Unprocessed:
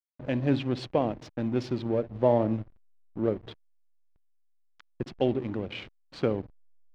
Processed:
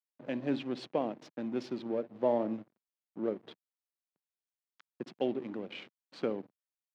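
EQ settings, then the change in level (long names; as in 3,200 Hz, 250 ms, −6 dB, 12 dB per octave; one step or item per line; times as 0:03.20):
high-pass filter 180 Hz 24 dB per octave
−6.0 dB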